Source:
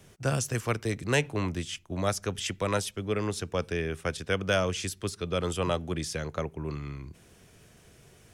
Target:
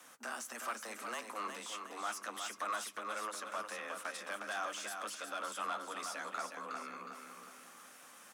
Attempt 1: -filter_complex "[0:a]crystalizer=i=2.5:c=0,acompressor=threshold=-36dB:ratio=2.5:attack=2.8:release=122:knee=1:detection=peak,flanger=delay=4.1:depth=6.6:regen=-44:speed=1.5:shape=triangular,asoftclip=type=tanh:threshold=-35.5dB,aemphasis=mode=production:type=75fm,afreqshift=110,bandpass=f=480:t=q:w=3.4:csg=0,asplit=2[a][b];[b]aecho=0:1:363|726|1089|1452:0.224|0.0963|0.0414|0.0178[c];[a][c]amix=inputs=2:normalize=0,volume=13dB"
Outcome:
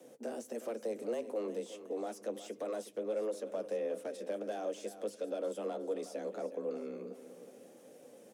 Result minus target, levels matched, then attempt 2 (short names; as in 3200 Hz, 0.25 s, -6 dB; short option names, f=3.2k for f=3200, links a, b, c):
1000 Hz band -10.5 dB; echo-to-direct -7 dB
-filter_complex "[0:a]crystalizer=i=2.5:c=0,acompressor=threshold=-36dB:ratio=2.5:attack=2.8:release=122:knee=1:detection=peak,flanger=delay=4.1:depth=6.6:regen=-44:speed=1.5:shape=triangular,asoftclip=type=tanh:threshold=-35.5dB,aemphasis=mode=production:type=75fm,afreqshift=110,bandpass=f=1.2k:t=q:w=3.4:csg=0,asplit=2[a][b];[b]aecho=0:1:363|726|1089|1452|1815:0.501|0.216|0.0927|0.0398|0.0171[c];[a][c]amix=inputs=2:normalize=0,volume=13dB"